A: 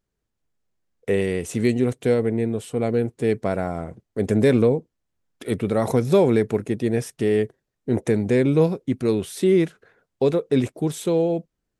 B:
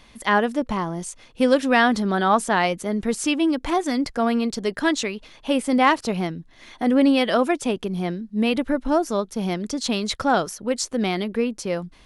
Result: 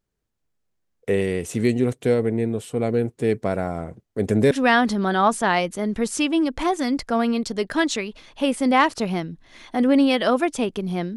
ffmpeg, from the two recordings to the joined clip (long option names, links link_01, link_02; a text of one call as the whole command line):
ffmpeg -i cue0.wav -i cue1.wav -filter_complex "[0:a]apad=whole_dur=11.16,atrim=end=11.16,atrim=end=4.512[link_01];[1:a]atrim=start=1.578:end=8.23[link_02];[link_01][link_02]acrossfade=duration=0.004:curve1=hsin:curve2=hsin" out.wav